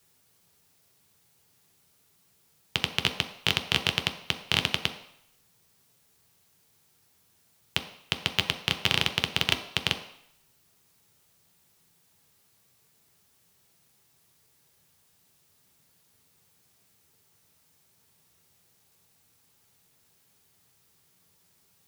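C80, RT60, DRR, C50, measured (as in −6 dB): 12.5 dB, 0.70 s, 3.5 dB, 10.5 dB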